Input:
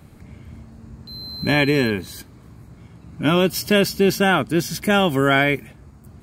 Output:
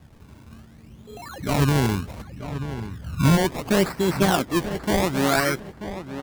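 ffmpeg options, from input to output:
ffmpeg -i in.wav -filter_complex "[0:a]asplit=3[link_01][link_02][link_03];[link_01]afade=type=out:start_time=1.58:duration=0.02[link_04];[link_02]asubboost=boost=8.5:cutoff=180,afade=type=in:start_time=1.58:duration=0.02,afade=type=out:start_time=3.36:duration=0.02[link_05];[link_03]afade=type=in:start_time=3.36:duration=0.02[link_06];[link_04][link_05][link_06]amix=inputs=3:normalize=0,flanger=delay=0.7:depth=5.8:regen=54:speed=0.62:shape=triangular,acrusher=samples=24:mix=1:aa=0.000001:lfo=1:lforange=24:lforate=0.68,asplit=2[link_07][link_08];[link_08]adelay=936,lowpass=frequency=2800:poles=1,volume=-11dB,asplit=2[link_09][link_10];[link_10]adelay=936,lowpass=frequency=2800:poles=1,volume=0.27,asplit=2[link_11][link_12];[link_12]adelay=936,lowpass=frequency=2800:poles=1,volume=0.27[link_13];[link_07][link_09][link_11][link_13]amix=inputs=4:normalize=0" out.wav

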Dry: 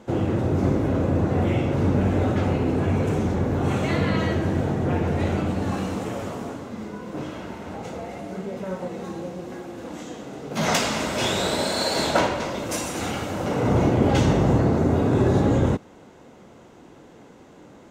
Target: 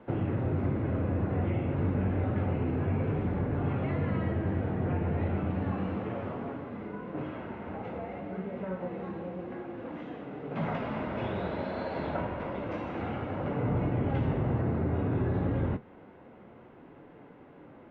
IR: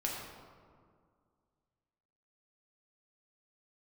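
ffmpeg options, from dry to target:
-filter_complex "[0:a]lowpass=frequency=2600:width=0.5412,lowpass=frequency=2600:width=1.3066,acrossover=split=190|1300[link_01][link_02][link_03];[link_01]acompressor=threshold=-24dB:ratio=4[link_04];[link_02]acompressor=threshold=-29dB:ratio=4[link_05];[link_03]acompressor=threshold=-44dB:ratio=4[link_06];[link_04][link_05][link_06]amix=inputs=3:normalize=0,flanger=delay=6.8:depth=4.7:regen=-60:speed=0.29:shape=sinusoidal"

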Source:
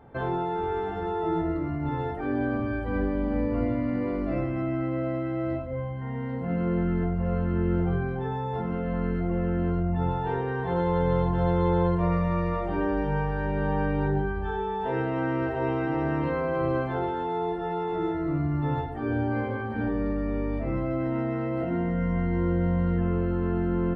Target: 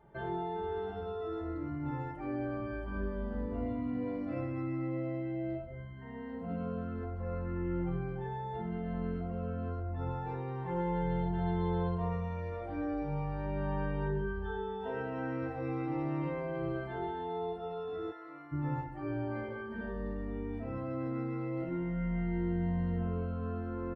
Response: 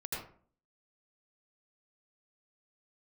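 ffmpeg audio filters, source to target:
-filter_complex "[0:a]asplit=3[link_01][link_02][link_03];[link_01]afade=type=out:start_time=18.1:duration=0.02[link_04];[link_02]highpass=730,afade=type=in:start_time=18.1:duration=0.02,afade=type=out:start_time=18.51:duration=0.02[link_05];[link_03]afade=type=in:start_time=18.51:duration=0.02[link_06];[link_04][link_05][link_06]amix=inputs=3:normalize=0,asplit=2[link_07][link_08];[link_08]adelay=2.9,afreqshift=0.36[link_09];[link_07][link_09]amix=inputs=2:normalize=1,volume=-6dB"

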